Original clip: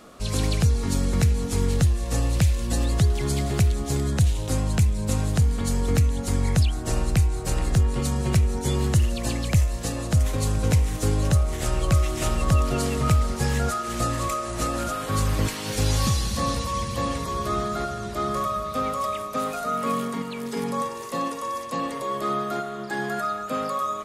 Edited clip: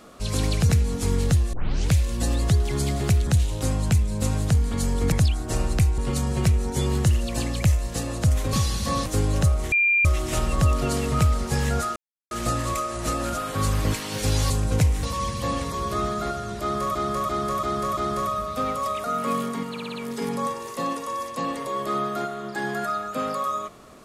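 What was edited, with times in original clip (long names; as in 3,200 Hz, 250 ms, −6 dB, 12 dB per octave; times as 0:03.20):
0:00.69–0:01.19: remove
0:02.03: tape start 0.40 s
0:03.77–0:04.14: remove
0:05.99–0:06.49: remove
0:07.35–0:07.87: remove
0:10.42–0:10.95: swap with 0:16.04–0:16.57
0:11.61–0:11.94: beep over 2,390 Hz −16.5 dBFS
0:13.85: splice in silence 0.35 s
0:18.15–0:18.49: repeat, 5 plays
0:19.22–0:19.63: remove
0:20.29: stutter 0.06 s, 5 plays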